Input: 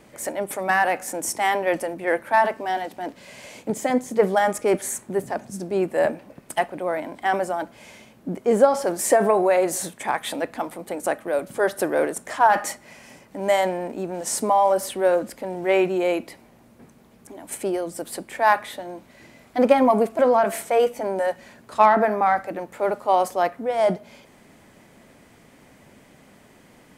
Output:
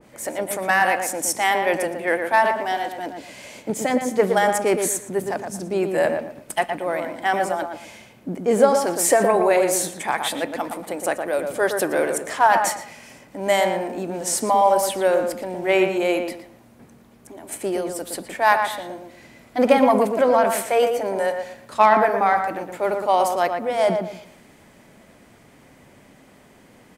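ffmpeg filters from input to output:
-filter_complex "[0:a]asplit=2[s0][s1];[s1]adelay=116,lowpass=f=1900:p=1,volume=0.562,asplit=2[s2][s3];[s3]adelay=116,lowpass=f=1900:p=1,volume=0.3,asplit=2[s4][s5];[s5]adelay=116,lowpass=f=1900:p=1,volume=0.3,asplit=2[s6][s7];[s7]adelay=116,lowpass=f=1900:p=1,volume=0.3[s8];[s2][s4][s6][s8]amix=inputs=4:normalize=0[s9];[s0][s9]amix=inputs=2:normalize=0,adynamicequalizer=threshold=0.0178:dfrequency=1700:dqfactor=0.7:tfrequency=1700:tqfactor=0.7:attack=5:release=100:ratio=0.375:range=2.5:mode=boostabove:tftype=highshelf"

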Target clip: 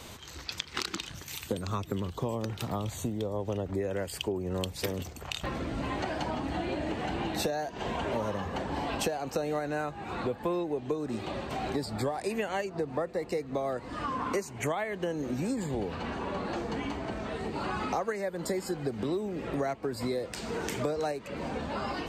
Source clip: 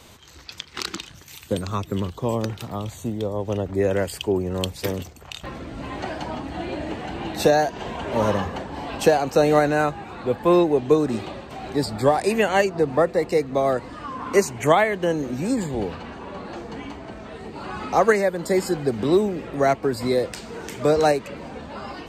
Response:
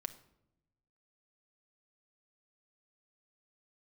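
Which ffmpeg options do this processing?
-af "acompressor=threshold=0.0282:ratio=8,volume=1.26"

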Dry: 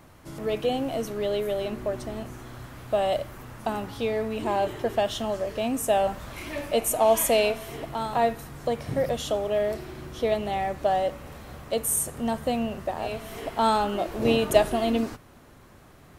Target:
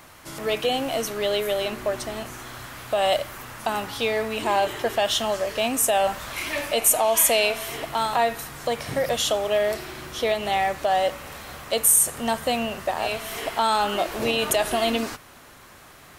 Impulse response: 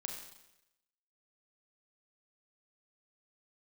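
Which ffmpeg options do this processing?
-af "alimiter=limit=0.141:level=0:latency=1:release=112,tiltshelf=f=650:g=-7,volume=1.58"

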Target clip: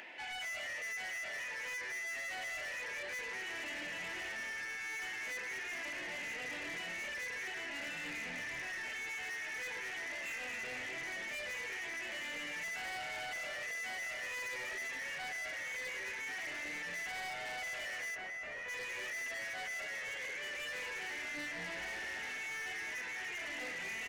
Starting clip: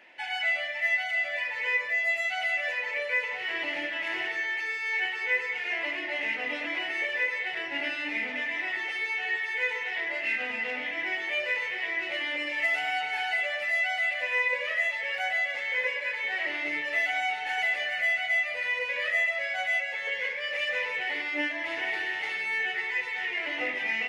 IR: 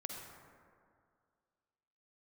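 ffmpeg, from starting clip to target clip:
-filter_complex "[0:a]bandreject=f=570:w=18,asplit=5[s0][s1][s2][s3][s4];[s1]adelay=217,afreqshift=-120,volume=0.473[s5];[s2]adelay=434,afreqshift=-240,volume=0.176[s6];[s3]adelay=651,afreqshift=-360,volume=0.0646[s7];[s4]adelay=868,afreqshift=-480,volume=0.024[s8];[s0][s5][s6][s7][s8]amix=inputs=5:normalize=0,asplit=2[s9][s10];[s10]aeval=exprs='0.0237*(abs(mod(val(0)/0.0237+3,4)-2)-1)':c=same,volume=0.398[s11];[s9][s11]amix=inputs=2:normalize=0,acompressor=mode=upward:threshold=0.00891:ratio=2.5,asoftclip=type=tanh:threshold=0.0316,asplit=3[s12][s13][s14];[s12]afade=t=out:st=18.14:d=0.02[s15];[s13]lowpass=f=1200:p=1,afade=t=in:st=18.14:d=0.02,afade=t=out:st=18.68:d=0.02[s16];[s14]afade=t=in:st=18.68:d=0.02[s17];[s15][s16][s17]amix=inputs=3:normalize=0,alimiter=level_in=3.76:limit=0.0631:level=0:latency=1,volume=0.266,volume=0.668"

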